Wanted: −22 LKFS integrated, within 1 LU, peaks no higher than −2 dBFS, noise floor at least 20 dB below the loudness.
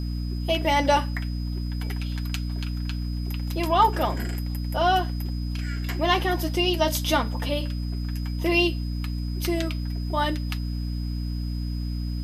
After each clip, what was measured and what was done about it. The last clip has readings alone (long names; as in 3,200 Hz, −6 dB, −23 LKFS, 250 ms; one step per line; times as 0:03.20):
mains hum 60 Hz; hum harmonics up to 300 Hz; level of the hum −26 dBFS; interfering tone 5,000 Hz; level of the tone −45 dBFS; integrated loudness −26.0 LKFS; sample peak −7.0 dBFS; target loudness −22.0 LKFS
→ mains-hum notches 60/120/180/240/300 Hz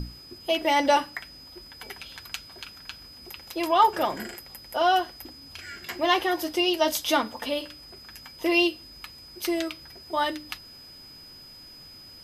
mains hum none found; interfering tone 5,000 Hz; level of the tone −45 dBFS
→ notch filter 5,000 Hz, Q 30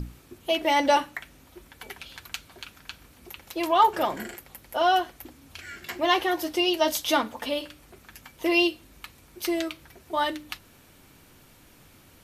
interfering tone none found; integrated loudness −25.5 LKFS; sample peak −8.0 dBFS; target loudness −22.0 LKFS
→ level +3.5 dB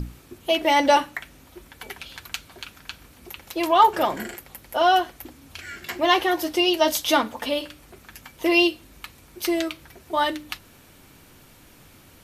integrated loudness −22.0 LKFS; sample peak −4.5 dBFS; background noise floor −52 dBFS